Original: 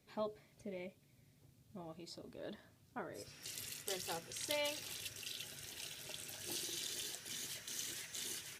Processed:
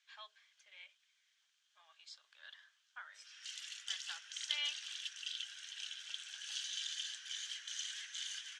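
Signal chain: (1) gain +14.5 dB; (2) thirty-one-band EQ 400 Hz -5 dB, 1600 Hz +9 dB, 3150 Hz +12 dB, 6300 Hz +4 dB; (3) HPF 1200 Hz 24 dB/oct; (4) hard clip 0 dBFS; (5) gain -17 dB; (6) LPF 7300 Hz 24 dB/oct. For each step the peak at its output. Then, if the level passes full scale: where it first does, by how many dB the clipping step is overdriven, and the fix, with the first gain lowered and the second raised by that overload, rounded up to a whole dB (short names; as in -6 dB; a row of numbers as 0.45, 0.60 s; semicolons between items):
-6.5, -1.0, -3.0, -3.0, -20.0, -21.0 dBFS; no overload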